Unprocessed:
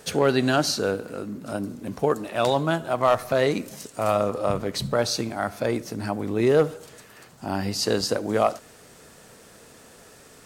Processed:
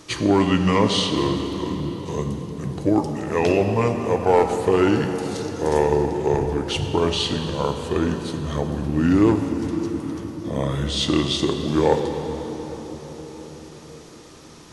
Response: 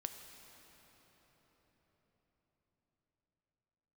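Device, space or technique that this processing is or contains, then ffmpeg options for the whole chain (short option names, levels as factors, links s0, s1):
slowed and reverbed: -filter_complex "[0:a]asetrate=31311,aresample=44100[s0];[1:a]atrim=start_sample=2205[s1];[s0][s1]afir=irnorm=-1:irlink=0,volume=1.88"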